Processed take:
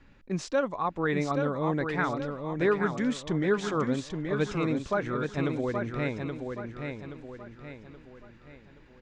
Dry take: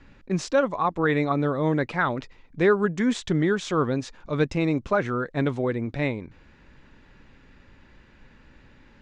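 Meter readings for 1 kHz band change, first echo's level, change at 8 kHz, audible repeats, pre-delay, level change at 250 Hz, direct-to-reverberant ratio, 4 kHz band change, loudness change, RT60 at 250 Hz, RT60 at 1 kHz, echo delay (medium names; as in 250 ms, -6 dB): -4.0 dB, -5.5 dB, -4.0 dB, 4, no reverb, -4.0 dB, no reverb, -4.5 dB, -5.0 dB, no reverb, no reverb, 825 ms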